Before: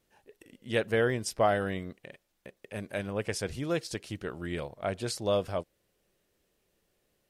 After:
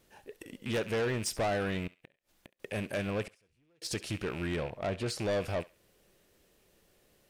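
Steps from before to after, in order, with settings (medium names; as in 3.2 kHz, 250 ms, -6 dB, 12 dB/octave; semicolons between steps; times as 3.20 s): rattle on loud lows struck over -46 dBFS, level -36 dBFS; 4.56–5.19 s: treble shelf 4.4 kHz -10 dB; in parallel at +3 dB: compression, threshold -39 dBFS, peak gain reduction 17.5 dB; 1.87–2.60 s: on the sum: inverted gate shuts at -32 dBFS, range -32 dB; saturation -27 dBFS, distortion -9 dB; 3.27–3.82 s: inverted gate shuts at -39 dBFS, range -38 dB; on a send: thinning echo 68 ms, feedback 30%, high-pass 990 Hz, level -17 dB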